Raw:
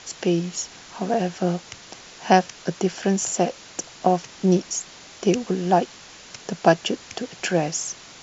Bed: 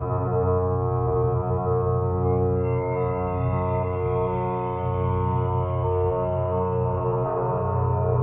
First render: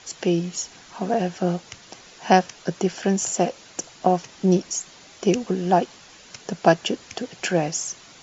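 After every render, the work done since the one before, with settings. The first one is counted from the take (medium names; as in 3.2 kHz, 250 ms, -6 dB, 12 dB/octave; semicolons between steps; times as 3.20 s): noise reduction 6 dB, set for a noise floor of -45 dBFS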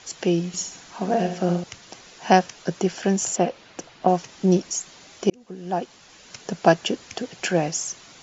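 0.47–1.64 s: flutter echo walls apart 11.8 m, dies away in 0.48 s; 3.36–4.08 s: low-pass 3.8 kHz; 5.30–6.36 s: fade in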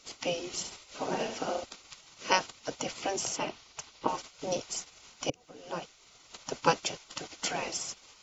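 spectral gate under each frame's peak -10 dB weak; band-stop 1.7 kHz, Q 5.1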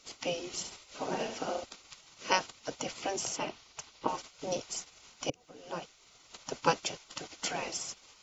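trim -2 dB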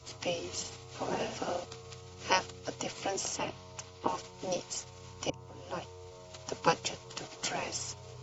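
add bed -27 dB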